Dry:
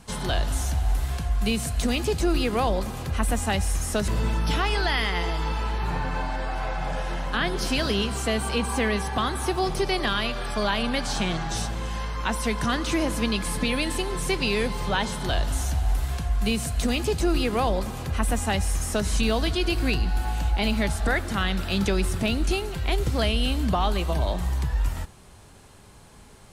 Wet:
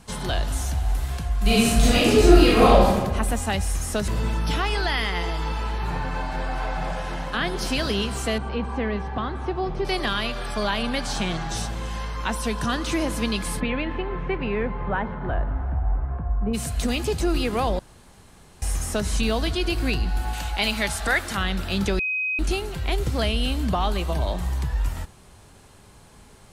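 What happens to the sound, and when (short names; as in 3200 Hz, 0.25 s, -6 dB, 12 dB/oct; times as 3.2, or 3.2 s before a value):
1.42–2.88 reverb throw, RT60 1.2 s, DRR -8.5 dB
5.87–6.49 echo throw 0.44 s, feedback 65%, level -7 dB
8.38–9.85 tape spacing loss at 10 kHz 31 dB
12.36–12.81 notch 2100 Hz, Q 8.7
13.59–16.53 LPF 2800 Hz -> 1200 Hz 24 dB/oct
17.79–18.62 room tone
20.33–21.37 tilt shelf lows -6 dB, about 630 Hz
21.99–22.39 bleep 2520 Hz -22.5 dBFS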